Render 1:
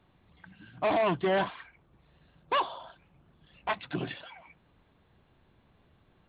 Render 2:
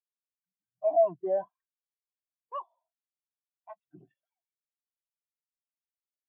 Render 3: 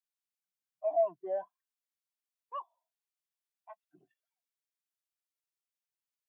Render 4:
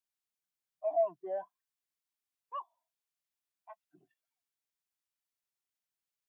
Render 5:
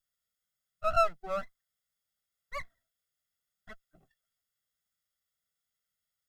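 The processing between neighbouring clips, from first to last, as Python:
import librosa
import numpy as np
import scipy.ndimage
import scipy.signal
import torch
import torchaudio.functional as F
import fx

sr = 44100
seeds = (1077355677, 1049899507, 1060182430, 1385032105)

y1 = fx.peak_eq(x, sr, hz=670.0, db=3.5, octaves=1.1)
y1 = fx.spectral_expand(y1, sr, expansion=2.5)
y1 = y1 * librosa.db_to_amplitude(1.5)
y2 = fx.highpass(y1, sr, hz=1000.0, slope=6)
y3 = fx.peak_eq(y2, sr, hz=500.0, db=-5.0, octaves=0.46)
y4 = fx.lower_of_two(y3, sr, delay_ms=0.59)
y4 = y4 + 0.68 * np.pad(y4, (int(1.5 * sr / 1000.0), 0))[:len(y4)]
y4 = y4 * librosa.db_to_amplitude(4.0)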